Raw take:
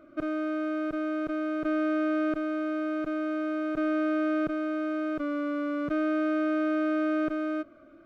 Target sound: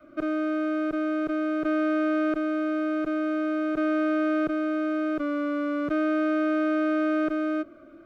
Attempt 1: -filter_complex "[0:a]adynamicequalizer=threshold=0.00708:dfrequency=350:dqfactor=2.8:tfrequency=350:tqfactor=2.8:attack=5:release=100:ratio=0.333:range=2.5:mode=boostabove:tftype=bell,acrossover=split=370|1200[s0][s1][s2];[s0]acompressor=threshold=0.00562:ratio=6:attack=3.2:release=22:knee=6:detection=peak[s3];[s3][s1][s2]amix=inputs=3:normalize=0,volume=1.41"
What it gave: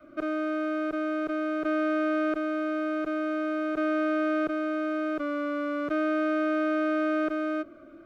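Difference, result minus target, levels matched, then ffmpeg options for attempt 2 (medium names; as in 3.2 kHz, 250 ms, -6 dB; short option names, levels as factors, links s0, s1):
compression: peak gain reduction +8.5 dB
-filter_complex "[0:a]adynamicequalizer=threshold=0.00708:dfrequency=350:dqfactor=2.8:tfrequency=350:tqfactor=2.8:attack=5:release=100:ratio=0.333:range=2.5:mode=boostabove:tftype=bell,acrossover=split=370|1200[s0][s1][s2];[s0]acompressor=threshold=0.0178:ratio=6:attack=3.2:release=22:knee=6:detection=peak[s3];[s3][s1][s2]amix=inputs=3:normalize=0,volume=1.41"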